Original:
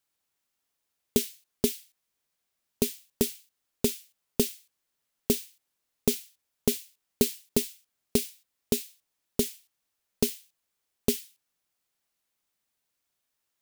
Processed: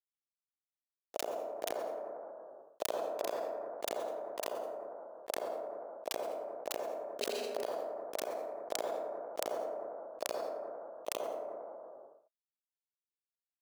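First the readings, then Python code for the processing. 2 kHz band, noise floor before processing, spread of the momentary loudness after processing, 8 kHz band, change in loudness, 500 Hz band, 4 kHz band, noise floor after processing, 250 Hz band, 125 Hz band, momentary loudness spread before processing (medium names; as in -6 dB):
-2.0 dB, -82 dBFS, 8 LU, -12.5 dB, -9.5 dB, -2.5 dB, -8.5 dB, under -85 dBFS, -19.0 dB, under -25 dB, 11 LU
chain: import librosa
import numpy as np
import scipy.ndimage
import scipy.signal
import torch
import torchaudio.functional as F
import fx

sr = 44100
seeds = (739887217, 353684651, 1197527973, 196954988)

y = fx.bin_expand(x, sr, power=2.0)
y = scipy.signal.sosfilt(scipy.signal.butter(2, 3300.0, 'lowpass', fs=sr, output='sos'), y)
y = fx.tilt_eq(y, sr, slope=2.0)
y = fx.over_compress(y, sr, threshold_db=-41.0, ratio=-1.0)
y = fx.gate_flip(y, sr, shuts_db=-36.0, range_db=-32)
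y = fx.quant_dither(y, sr, seeds[0], bits=10, dither='none')
y = fx.highpass_res(y, sr, hz=620.0, q=4.9)
y = y + 10.0 ** (-7.0 / 20.0) * np.pad(y, (int(84 * sr / 1000.0), 0))[:len(y)]
y = fx.rev_plate(y, sr, seeds[1], rt60_s=0.84, hf_ratio=0.4, predelay_ms=110, drr_db=-2.5)
y = fx.sustainer(y, sr, db_per_s=20.0)
y = y * librosa.db_to_amplitude(13.0)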